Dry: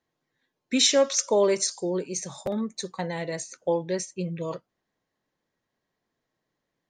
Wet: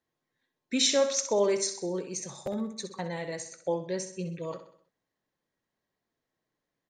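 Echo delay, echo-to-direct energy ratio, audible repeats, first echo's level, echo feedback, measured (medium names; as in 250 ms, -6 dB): 64 ms, -9.5 dB, 4, -10.5 dB, 49%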